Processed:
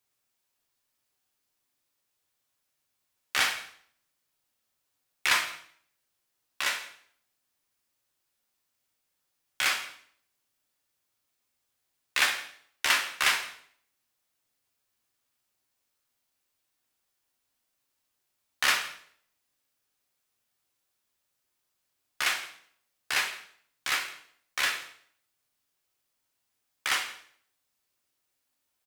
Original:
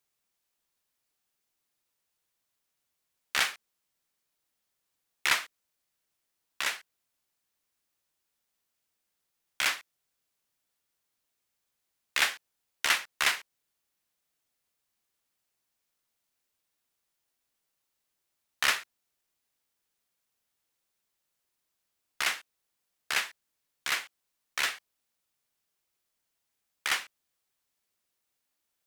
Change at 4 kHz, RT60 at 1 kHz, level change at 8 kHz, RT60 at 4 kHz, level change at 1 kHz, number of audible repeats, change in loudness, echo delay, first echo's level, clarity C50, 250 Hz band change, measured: +2.0 dB, 0.60 s, +2.0 dB, 0.55 s, +2.5 dB, 1, +1.5 dB, 0.163 s, -20.0 dB, 8.5 dB, +2.5 dB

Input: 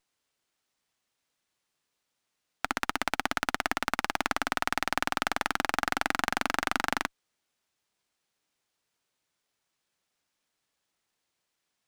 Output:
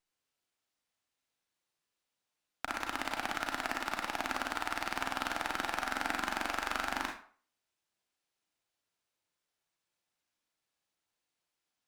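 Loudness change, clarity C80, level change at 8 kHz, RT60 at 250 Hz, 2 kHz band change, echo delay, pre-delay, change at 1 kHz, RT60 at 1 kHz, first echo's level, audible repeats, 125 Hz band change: -5.5 dB, 10.0 dB, -6.0 dB, 0.40 s, -5.5 dB, none, 32 ms, -5.0 dB, 0.45 s, none, none, -6.5 dB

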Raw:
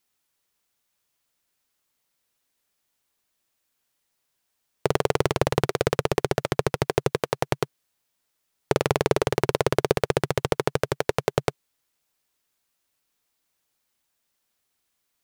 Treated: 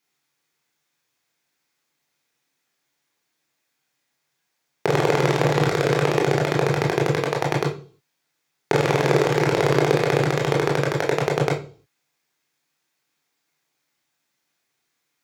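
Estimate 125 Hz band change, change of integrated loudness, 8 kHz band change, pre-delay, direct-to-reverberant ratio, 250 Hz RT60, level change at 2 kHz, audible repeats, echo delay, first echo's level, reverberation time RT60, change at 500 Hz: +6.5 dB, +4.5 dB, +1.5 dB, 20 ms, -1.0 dB, 0.55 s, +6.0 dB, none, none, none, 0.40 s, +4.0 dB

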